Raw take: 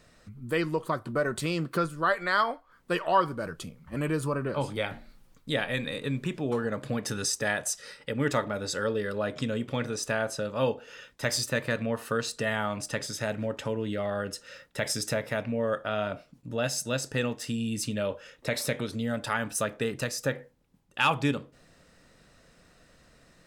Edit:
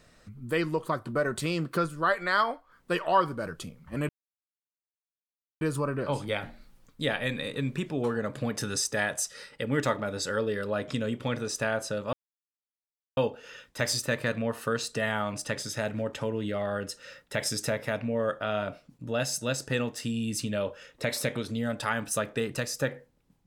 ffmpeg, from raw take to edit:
-filter_complex "[0:a]asplit=3[s0][s1][s2];[s0]atrim=end=4.09,asetpts=PTS-STARTPTS,afade=t=out:st=4.086:d=0.004:c=hsin,apad=pad_dur=1.52[s3];[s1]atrim=start=4.09:end=10.61,asetpts=PTS-STARTPTS,afade=t=in:d=0.004:c=hsin,afade=t=out:st=6.516:d=0.004:c=hsin,apad=pad_dur=1.04[s4];[s2]atrim=start=10.61,asetpts=PTS-STARTPTS,afade=t=in:d=0.004:c=hsin[s5];[s3][s4][s5]concat=n=3:v=0:a=1"

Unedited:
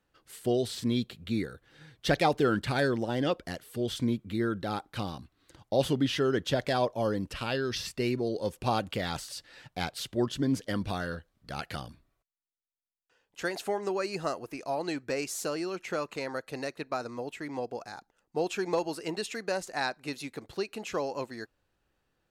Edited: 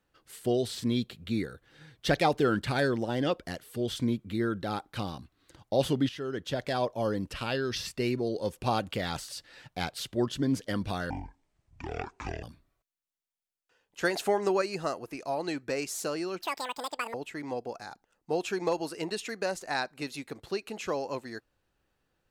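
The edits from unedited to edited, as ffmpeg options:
-filter_complex "[0:a]asplit=8[s0][s1][s2][s3][s4][s5][s6][s7];[s0]atrim=end=6.09,asetpts=PTS-STARTPTS,afade=t=out:st=6.086:d=0.004:c=hsin:silence=0.237137[s8];[s1]atrim=start=6.09:end=11.104,asetpts=PTS-STARTPTS,afade=t=in:d=1.33:c=qsin:silence=0.237137[s9];[s2]atrim=start=11.1:end=11.83,asetpts=PTS-STARTPTS,asetrate=24255,aresample=44100[s10];[s3]atrim=start=11.826:end=13.432[s11];[s4]atrim=start=13.428:end=14.022,asetpts=PTS-STARTPTS,volume=1.68[s12];[s5]atrim=start=14.018:end=15.824[s13];[s6]atrim=start=15.82:end=17.2,asetpts=PTS-STARTPTS,asetrate=84231,aresample=44100[s14];[s7]atrim=start=17.196[s15];[s8][s9]concat=n=2:v=0:a=1[s16];[s16][s10]acrossfade=d=0.004:c1=hsin:c2=hsin[s17];[s17][s11]acrossfade=d=0.004:c1=hsin:c2=hsin[s18];[s18][s12]acrossfade=d=0.004:c1=hsin:c2=hsin[s19];[s19][s13]acrossfade=d=0.004:c1=hsin:c2=hsin[s20];[s20][s14]acrossfade=d=0.004:c1=hsin:c2=hsin[s21];[s21][s15]acrossfade=d=0.004:c1=hsin:c2=hsin"

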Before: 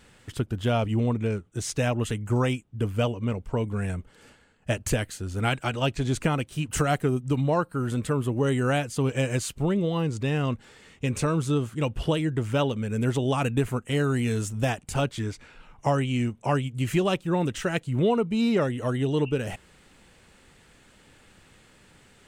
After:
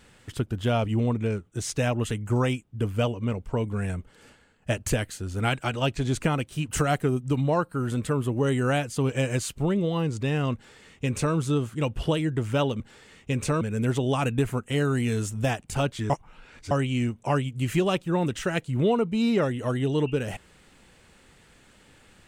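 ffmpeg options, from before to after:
-filter_complex "[0:a]asplit=5[s0][s1][s2][s3][s4];[s0]atrim=end=12.802[s5];[s1]atrim=start=10.538:end=11.352[s6];[s2]atrim=start=12.798:end=15.292[s7];[s3]atrim=start=15.288:end=15.902,asetpts=PTS-STARTPTS,areverse[s8];[s4]atrim=start=15.898[s9];[s5][s6]acrossfade=d=0.004:c1=hsin:c2=hsin[s10];[s10][s7]acrossfade=d=0.004:c1=hsin:c2=hsin[s11];[s11][s8]acrossfade=d=0.004:c1=hsin:c2=hsin[s12];[s12][s9]acrossfade=d=0.004:c1=hsin:c2=hsin"

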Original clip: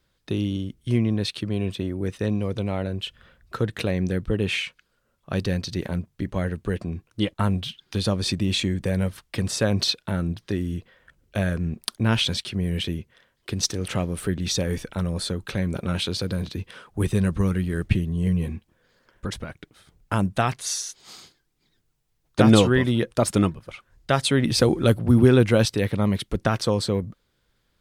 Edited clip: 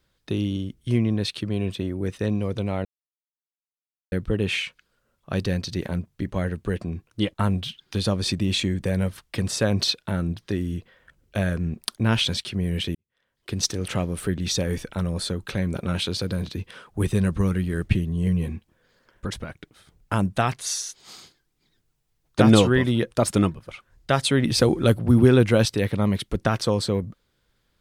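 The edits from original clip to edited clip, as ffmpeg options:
-filter_complex "[0:a]asplit=4[s0][s1][s2][s3];[s0]atrim=end=2.85,asetpts=PTS-STARTPTS,afade=t=out:st=2.846:d=0.004:c=hsin[s4];[s1]atrim=start=2.85:end=4.12,asetpts=PTS-STARTPTS,volume=0[s5];[s2]atrim=start=4.12:end=12.95,asetpts=PTS-STARTPTS,afade=t=in:d=0.004:c=hsin,afade=t=out:st=8.826:d=0.004:c=hsin[s6];[s3]atrim=start=12.95,asetpts=PTS-STARTPTS,afade=t=in:d=0.6:c=qua[s7];[s4][s5][s6][s7]concat=n=4:v=0:a=1"

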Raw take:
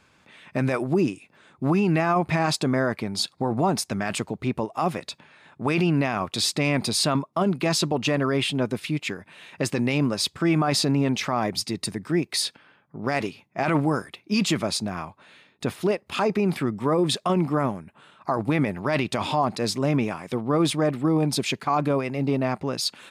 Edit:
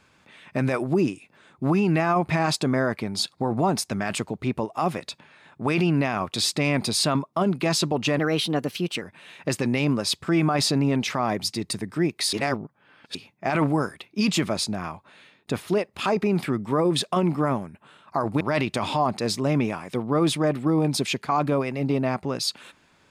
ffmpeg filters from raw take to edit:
-filter_complex "[0:a]asplit=6[s0][s1][s2][s3][s4][s5];[s0]atrim=end=8.194[s6];[s1]atrim=start=8.19:end=9.15,asetpts=PTS-STARTPTS,asetrate=51156,aresample=44100[s7];[s2]atrim=start=9.146:end=12.462[s8];[s3]atrim=start=12.458:end=13.282,asetpts=PTS-STARTPTS,areverse[s9];[s4]atrim=start=13.278:end=18.542[s10];[s5]atrim=start=18.788[s11];[s6][s7]acrossfade=d=0.004:c1=hsin:c2=hsin[s12];[s12][s8]acrossfade=d=0.004:c1=hsin:c2=hsin[s13];[s13][s9]acrossfade=d=0.004:c1=hsin:c2=hsin[s14];[s14][s10]acrossfade=d=0.004:c1=hsin:c2=hsin[s15];[s15][s11]acrossfade=d=0.004:c1=hsin:c2=hsin"

